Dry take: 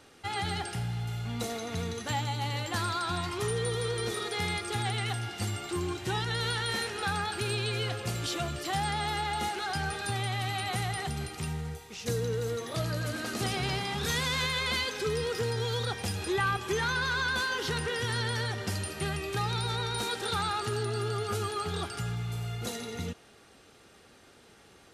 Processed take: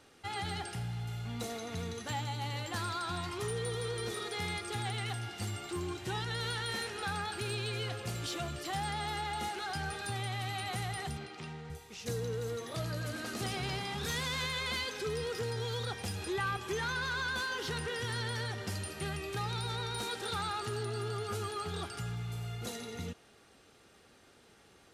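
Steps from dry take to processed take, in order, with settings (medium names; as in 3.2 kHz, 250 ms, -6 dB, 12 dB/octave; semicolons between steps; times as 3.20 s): in parallel at -6 dB: overload inside the chain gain 29.5 dB; 11.17–11.70 s: on the sum: band-pass 190–4500 Hz; trim -8 dB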